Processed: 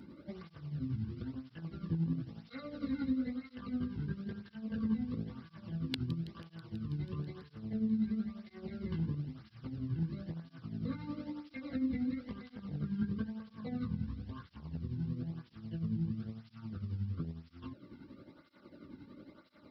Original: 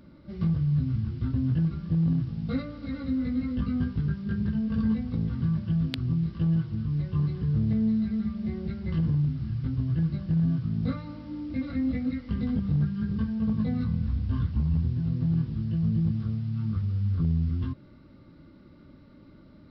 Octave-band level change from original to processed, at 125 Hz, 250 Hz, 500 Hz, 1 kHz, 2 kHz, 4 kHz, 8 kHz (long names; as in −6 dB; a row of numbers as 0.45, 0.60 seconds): −14.0 dB, −9.5 dB, −6.5 dB, −6.5 dB, −6.5 dB, −5.0 dB, can't be measured